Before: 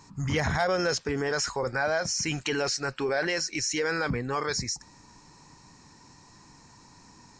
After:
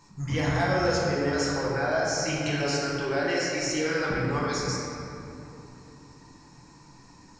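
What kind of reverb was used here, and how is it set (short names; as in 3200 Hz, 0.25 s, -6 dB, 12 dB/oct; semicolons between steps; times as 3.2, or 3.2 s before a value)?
shoebox room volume 120 m³, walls hard, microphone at 0.75 m; gain -5.5 dB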